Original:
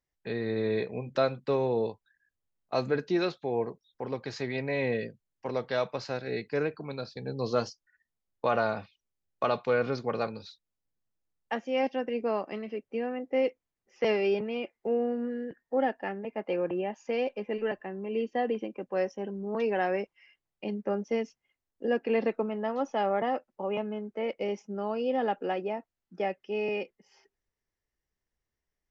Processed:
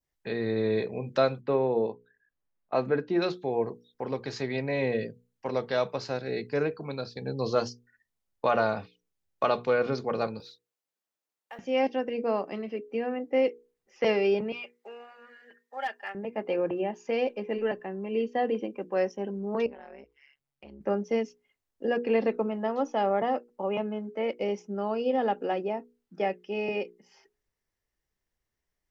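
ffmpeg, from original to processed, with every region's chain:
-filter_complex "[0:a]asettb=1/sr,asplit=3[a][b][c];[a]atrim=end=1.414[d];[b]atrim=start=1.41:end=3.22,asetpts=PTS-STARTPTS,afade=t=in:d=0.004:c=qsin,afade=t=out:st=1.806:d=0.004:c=qsin,lowpass=2.4k,equalizer=f=94:t=o:w=0.49:g=-12.5[e];[c]atrim=start=3.216[f];[d][e]acrossfade=d=0.004:c1=hsin:c2=qsin[g];[g][f]acrossfade=d=0.004:c1=qsin:c2=hsin,asettb=1/sr,asplit=3[h][i][j];[h]atrim=end=10.404[k];[i]atrim=start=10.4:end=11.59,asetpts=PTS-STARTPTS,afade=t=in:d=0.004:c=qsin,afade=t=out:st=1.186:d=0.004:c=qsin,highpass=400,acompressor=threshold=-49dB:ratio=2.5:attack=3.2:release=140:knee=1:detection=peak,acrusher=bits=8:mode=log:mix=0:aa=0.000001[l];[j]atrim=start=11.586[m];[k][l]acrossfade=d=0.004:c1=hsin:c2=qsin[n];[n][m]acrossfade=d=0.004:c1=qsin:c2=hsin,asettb=1/sr,asplit=3[o][p][q];[o]atrim=end=14.524[r];[p]atrim=start=14.52:end=16.15,asetpts=PTS-STARTPTS,afade=t=in:d=0.004:c=qsin,afade=t=out:st=1.626:d=0.004:c=qsin,highpass=1.2k,aecho=1:1:5:0.66,atrim=end_sample=71883,asoftclip=type=hard:threshold=-26.5dB[s];[q]atrim=start=16.146[t];[r][s]acrossfade=d=0.004:c1=hsin:c2=qsin[u];[u][t]acrossfade=d=0.004:c1=qsin:c2=hsin,asettb=1/sr,asplit=3[v][w][x];[v]atrim=end=19.664[y];[w]atrim=start=19.66:end=20.81,asetpts=PTS-STARTPTS,afade=t=in:d=0.004:c=qsin,afade=t=out:st=1.146:d=0.004:c=qsin,tremolo=f=140:d=0.947,acompressor=threshold=-48dB:ratio=4:attack=3.2:release=140:knee=1:detection=peak[z];[x]atrim=start=20.806[aa];[y][z]acrossfade=d=0.004:c1=hsin:c2=qsin[ab];[ab][aa]acrossfade=d=0.004:c1=qsin:c2=hsin,bandreject=f=60:t=h:w=6,bandreject=f=120:t=h:w=6,bandreject=f=180:t=h:w=6,bandreject=f=240:t=h:w=6,bandreject=f=300:t=h:w=6,bandreject=f=360:t=h:w=6,bandreject=f=420:t=h:w=6,bandreject=f=480:t=h:w=6,adynamicequalizer=threshold=0.00447:dfrequency=2000:dqfactor=0.86:tfrequency=2000:tqfactor=0.86:attack=5:release=100:ratio=0.375:range=2:mode=cutabove:tftype=bell,volume=2.5dB"

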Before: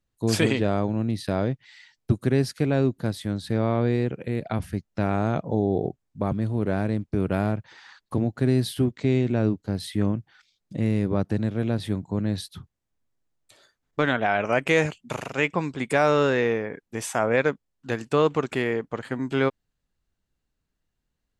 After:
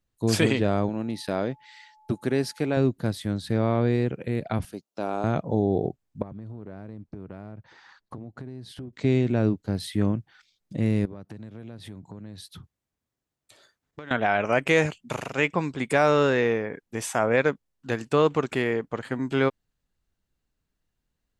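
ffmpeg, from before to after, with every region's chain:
-filter_complex "[0:a]asettb=1/sr,asplit=3[a][b][c];[a]atrim=end=0.894[d];[b]atrim=start=0.89:end=2.77,asetpts=PTS-STARTPTS,afade=t=in:d=0.004:c=qsin,afade=t=out:st=1.876:d=0.004:c=qsin,equalizer=f=85:w=0.76:g=-12.5,aeval=exprs='val(0)+0.00178*sin(2*PI*860*n/s)':c=same[e];[c]atrim=start=2.766[f];[d][e]acrossfade=d=0.004:c1=hsin:c2=qsin[g];[g][f]acrossfade=d=0.004:c1=qsin:c2=hsin,asettb=1/sr,asplit=3[h][i][j];[h]atrim=end=4.654[k];[i]atrim=start=4.65:end=5.24,asetpts=PTS-STARTPTS,afade=t=in:d=0.004:c=qsin,afade=t=out:st=0.586:d=0.004:c=qsin,highpass=360,equalizer=f=1.9k:w=2:g=-13[l];[j]atrim=start=5.236[m];[k][l]acrossfade=d=0.004:c1=hsin:c2=qsin[n];[n][m]acrossfade=d=0.004:c1=qsin:c2=hsin,asettb=1/sr,asplit=3[o][p][q];[o]atrim=end=6.224[r];[p]atrim=start=6.22:end=8.93,asetpts=PTS-STARTPTS,afade=t=in:d=0.004:c=qsin,afade=t=out:st=2.706:d=0.004:c=qsin,lowpass=5.5k,equalizer=f=3k:w=0.75:g=-7,acompressor=threshold=-35dB:ratio=8:attack=3.2:release=140:knee=1:detection=peak[s];[q]atrim=start=8.926[t];[r][s]acrossfade=d=0.004:c1=hsin:c2=qsin[u];[u][t]acrossfade=d=0.004:c1=qsin:c2=hsin,asettb=1/sr,asplit=3[v][w][x];[v]atrim=end=11.054[y];[w]atrim=start=11.05:end=14.11,asetpts=PTS-STARTPTS,afade=t=in:d=0.004:c=qsin,afade=t=out:st=3.056:d=0.004:c=qsin,acompressor=threshold=-39dB:ratio=4:attack=3.2:release=140:knee=1:detection=peak,highpass=44[z];[x]atrim=start=14.106[aa];[y][z]acrossfade=d=0.004:c1=hsin:c2=qsin[ab];[ab][aa]acrossfade=d=0.004:c1=qsin:c2=hsin"

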